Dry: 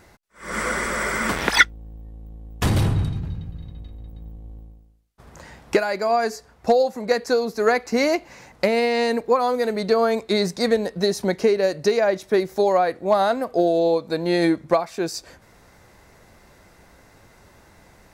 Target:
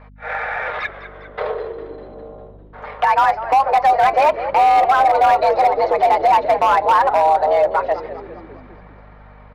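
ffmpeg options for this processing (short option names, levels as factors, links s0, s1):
-filter_complex "[0:a]equalizer=f=2500:w=1.7:g=-10.5,aecho=1:1:6.4:0.53,asplit=2[s0][s1];[s1]acompressor=threshold=0.0251:ratio=6,volume=1.41[s2];[s0][s2]amix=inputs=2:normalize=0,alimiter=limit=0.237:level=0:latency=1:release=20,dynaudnorm=f=350:g=21:m=2.51,highpass=f=180:t=q:w=0.5412,highpass=f=180:t=q:w=1.307,lowpass=f=3100:t=q:w=0.5176,lowpass=f=3100:t=q:w=0.7071,lowpass=f=3100:t=q:w=1.932,afreqshift=290,aeval=exprs='val(0)+0.00794*(sin(2*PI*50*n/s)+sin(2*PI*2*50*n/s)/2+sin(2*PI*3*50*n/s)/3+sin(2*PI*4*50*n/s)/4+sin(2*PI*5*50*n/s)/5)':c=same,atempo=1.9,asplit=7[s3][s4][s5][s6][s7][s8][s9];[s4]adelay=201,afreqshift=-73,volume=0.224[s10];[s5]adelay=402,afreqshift=-146,volume=0.132[s11];[s6]adelay=603,afreqshift=-219,volume=0.0776[s12];[s7]adelay=804,afreqshift=-292,volume=0.0462[s13];[s8]adelay=1005,afreqshift=-365,volume=0.0272[s14];[s9]adelay=1206,afreqshift=-438,volume=0.016[s15];[s3][s10][s11][s12][s13][s14][s15]amix=inputs=7:normalize=0,aeval=exprs='0.376*(cos(1*acos(clip(val(0)/0.376,-1,1)))-cos(1*PI/2))+0.00376*(cos(7*acos(clip(val(0)/0.376,-1,1)))-cos(7*PI/2))':c=same"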